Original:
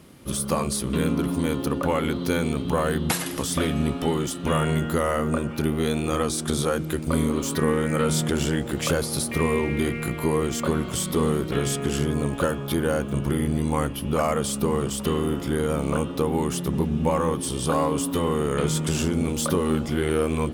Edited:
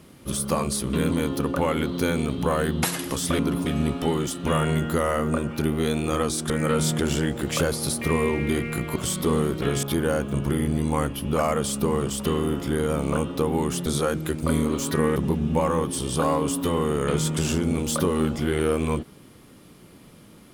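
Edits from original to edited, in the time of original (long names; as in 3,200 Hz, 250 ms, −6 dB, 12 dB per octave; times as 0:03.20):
0:01.11–0:01.38: move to 0:03.66
0:06.50–0:07.80: move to 0:16.66
0:10.26–0:10.86: remove
0:11.73–0:12.63: remove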